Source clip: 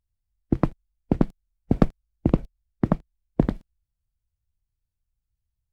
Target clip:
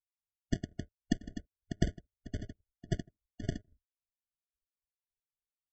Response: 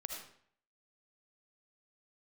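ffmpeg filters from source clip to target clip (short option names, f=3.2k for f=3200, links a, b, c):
-af "aecho=1:1:157:0.2,aeval=exprs='val(0)*sin(2*PI*620*n/s)':c=same,highpass=f=260:t=q:w=0.5412,highpass=f=260:t=q:w=1.307,lowpass=f=2.1k:t=q:w=0.5176,lowpass=f=2.1k:t=q:w=0.7071,lowpass=f=2.1k:t=q:w=1.932,afreqshift=-53,aresample=16000,acrusher=samples=31:mix=1:aa=0.000001,aresample=44100,tremolo=f=3.7:d=0.95,afftdn=nr=23:nf=-57,afftfilt=real='re*eq(mod(floor(b*sr/1024/720),2),0)':imag='im*eq(mod(floor(b*sr/1024/720),2),0)':win_size=1024:overlap=0.75,volume=-3.5dB"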